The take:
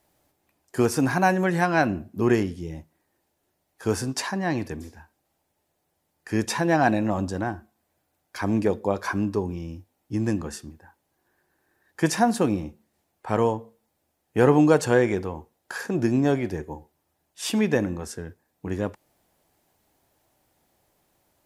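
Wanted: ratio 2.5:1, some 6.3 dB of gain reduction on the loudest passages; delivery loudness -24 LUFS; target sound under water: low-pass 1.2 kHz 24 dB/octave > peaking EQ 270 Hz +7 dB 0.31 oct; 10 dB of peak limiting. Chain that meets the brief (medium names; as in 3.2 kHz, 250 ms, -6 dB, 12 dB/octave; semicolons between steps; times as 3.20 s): compression 2.5:1, threshold -22 dBFS; peak limiter -20 dBFS; low-pass 1.2 kHz 24 dB/octave; peaking EQ 270 Hz +7 dB 0.31 oct; trim +6.5 dB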